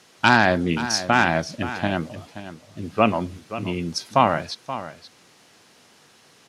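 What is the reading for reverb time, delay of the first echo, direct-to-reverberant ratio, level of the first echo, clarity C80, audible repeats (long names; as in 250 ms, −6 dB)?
no reverb audible, 528 ms, no reverb audible, −13.0 dB, no reverb audible, 1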